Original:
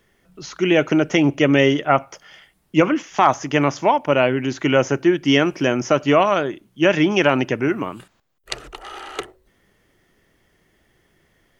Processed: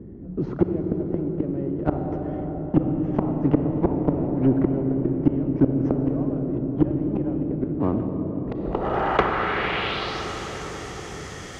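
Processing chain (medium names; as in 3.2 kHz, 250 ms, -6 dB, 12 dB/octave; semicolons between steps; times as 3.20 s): block-companded coder 3-bit; high-pass 75 Hz 12 dB/octave; bass shelf 95 Hz +12 dB; inverted gate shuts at -8 dBFS, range -29 dB; low-pass that closes with the level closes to 510 Hz, closed at -14.5 dBFS; on a send at -7 dB: peaking EQ 150 Hz +4 dB + reverberation RT60 5.5 s, pre-delay 27 ms; on the sum: saturation -12 dBFS, distortion -16 dB; low-pass sweep 290 Hz -> 6.6 kHz, 8.53–10.29 s; spectrum-flattening compressor 2:1; trim +4 dB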